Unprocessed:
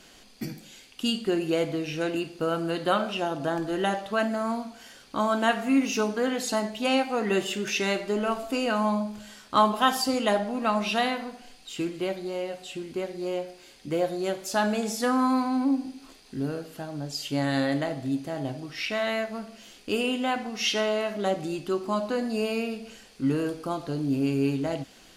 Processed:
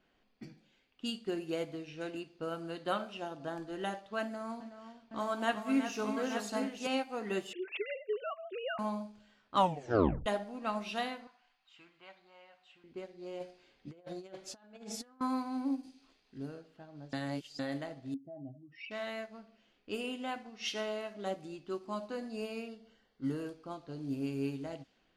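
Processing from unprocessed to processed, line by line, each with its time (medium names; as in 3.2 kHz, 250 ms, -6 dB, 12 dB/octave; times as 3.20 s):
4.23–6.87 s: multi-tap echo 372/880 ms -7/-6 dB
7.53–8.79 s: formants replaced by sine waves
9.55 s: tape stop 0.71 s
11.27–12.84 s: resonant low shelf 630 Hz -14 dB, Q 1.5
13.40–15.21 s: compressor with a negative ratio -32 dBFS, ratio -0.5
15.83–16.38 s: treble shelf 3.1 kHz +10.5 dB
17.13–17.59 s: reverse
18.14–18.91 s: spectral contrast enhancement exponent 2.4
22.68–23.41 s: Butterworth band-stop 2.5 kHz, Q 5.6
whole clip: level-controlled noise filter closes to 2.2 kHz, open at -22 dBFS; upward expansion 1.5:1, over -38 dBFS; trim -7 dB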